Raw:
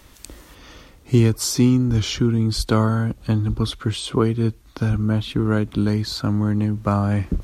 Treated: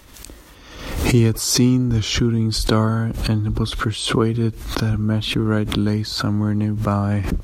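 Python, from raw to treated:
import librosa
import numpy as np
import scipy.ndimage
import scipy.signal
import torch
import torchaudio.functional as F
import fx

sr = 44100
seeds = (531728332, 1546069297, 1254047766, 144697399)

y = fx.pre_swell(x, sr, db_per_s=63.0)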